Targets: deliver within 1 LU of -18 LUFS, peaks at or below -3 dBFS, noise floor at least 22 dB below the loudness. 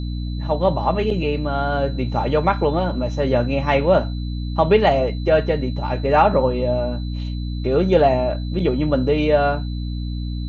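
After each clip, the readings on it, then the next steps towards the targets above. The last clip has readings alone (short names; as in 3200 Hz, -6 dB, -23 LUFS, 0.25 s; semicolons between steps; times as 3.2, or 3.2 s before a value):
hum 60 Hz; harmonics up to 300 Hz; hum level -23 dBFS; steady tone 4000 Hz; tone level -42 dBFS; loudness -20.0 LUFS; peak -3.0 dBFS; loudness target -18.0 LUFS
-> de-hum 60 Hz, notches 5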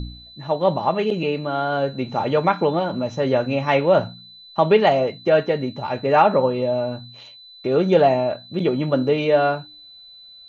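hum none; steady tone 4000 Hz; tone level -42 dBFS
-> notch 4000 Hz, Q 30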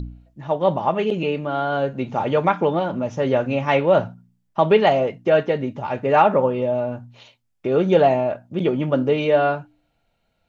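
steady tone none; loudness -20.5 LUFS; peak -3.5 dBFS; loudness target -18.0 LUFS
-> gain +2.5 dB; limiter -3 dBFS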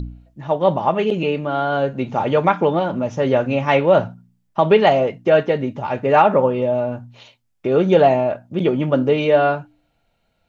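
loudness -18.0 LUFS; peak -3.0 dBFS; noise floor -67 dBFS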